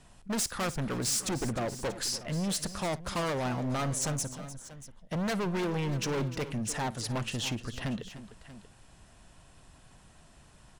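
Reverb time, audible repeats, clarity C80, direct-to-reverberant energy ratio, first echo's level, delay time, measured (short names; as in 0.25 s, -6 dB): none, 3, none, none, -20.0 dB, 56 ms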